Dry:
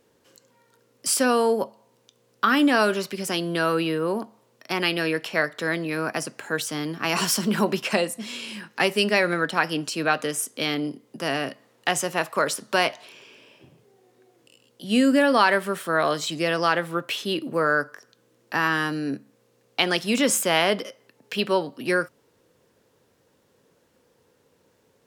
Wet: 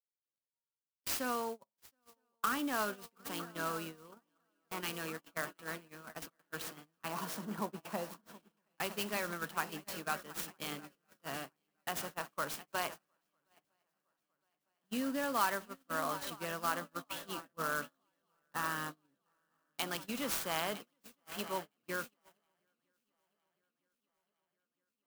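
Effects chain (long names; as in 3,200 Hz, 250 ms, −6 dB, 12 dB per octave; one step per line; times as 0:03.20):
guitar amp tone stack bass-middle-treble 5-5-5
feedback echo with a long and a short gap by turns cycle 961 ms, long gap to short 3 to 1, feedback 71%, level −12.5 dB
noise gate −38 dBFS, range −33 dB
high shelf with overshoot 1,500 Hz −7 dB, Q 1.5, from 0:07.08 −13.5 dB, from 0:08.57 −7 dB
converter with an unsteady clock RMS 0.04 ms
level +1 dB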